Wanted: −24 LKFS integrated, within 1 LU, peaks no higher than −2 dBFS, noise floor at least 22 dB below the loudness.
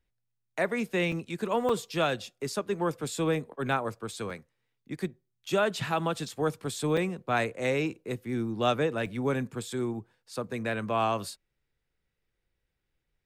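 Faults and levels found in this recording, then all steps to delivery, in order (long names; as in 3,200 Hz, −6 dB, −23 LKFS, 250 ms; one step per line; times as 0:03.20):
number of dropouts 5; longest dropout 4.2 ms; integrated loudness −30.5 LKFS; sample peak −12.5 dBFS; target loudness −24.0 LKFS
→ repair the gap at 0:01.12/0:01.69/0:04.30/0:06.97/0:09.06, 4.2 ms
level +6.5 dB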